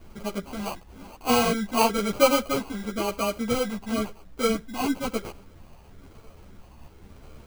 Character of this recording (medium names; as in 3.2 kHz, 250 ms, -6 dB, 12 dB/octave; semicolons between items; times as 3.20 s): phasing stages 8, 1 Hz, lowest notch 520–1600 Hz; aliases and images of a low sample rate 1.8 kHz, jitter 0%; a shimmering, thickened sound